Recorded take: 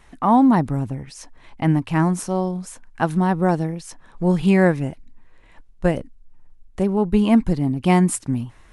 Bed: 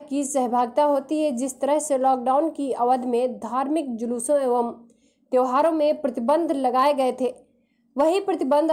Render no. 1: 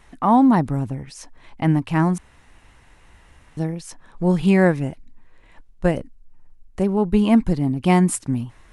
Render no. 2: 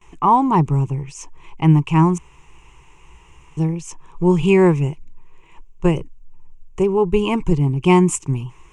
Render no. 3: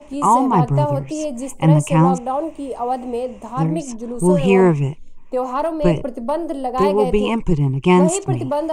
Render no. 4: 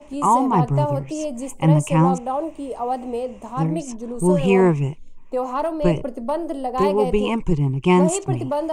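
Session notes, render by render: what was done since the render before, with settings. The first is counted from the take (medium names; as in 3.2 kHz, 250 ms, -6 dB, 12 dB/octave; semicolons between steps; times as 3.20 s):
2.18–3.57 s: room tone; 5.91–6.84 s: band-stop 3.5 kHz, Q 10
gate with hold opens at -43 dBFS; rippled EQ curve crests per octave 0.72, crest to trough 15 dB
add bed -1.5 dB
trim -2.5 dB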